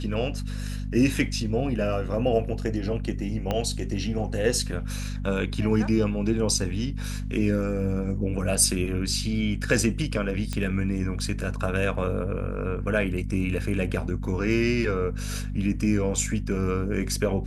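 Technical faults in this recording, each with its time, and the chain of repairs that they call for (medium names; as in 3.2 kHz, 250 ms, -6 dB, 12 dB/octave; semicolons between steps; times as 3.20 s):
hum 50 Hz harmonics 5 -31 dBFS
3.51 s: pop -13 dBFS
10.53 s: pop -16 dBFS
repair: de-click; de-hum 50 Hz, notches 5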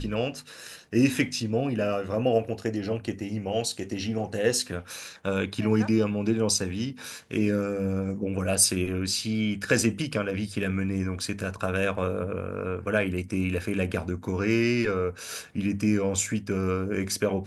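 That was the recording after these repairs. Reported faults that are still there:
3.51 s: pop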